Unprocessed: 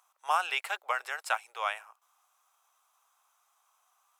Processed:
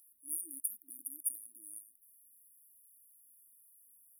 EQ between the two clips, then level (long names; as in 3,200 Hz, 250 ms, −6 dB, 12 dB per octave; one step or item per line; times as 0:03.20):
linear-phase brick-wall band-stop 320–9,200 Hz
low-shelf EQ 420 Hz +6 dB
phaser with its sweep stopped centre 530 Hz, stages 6
+16.5 dB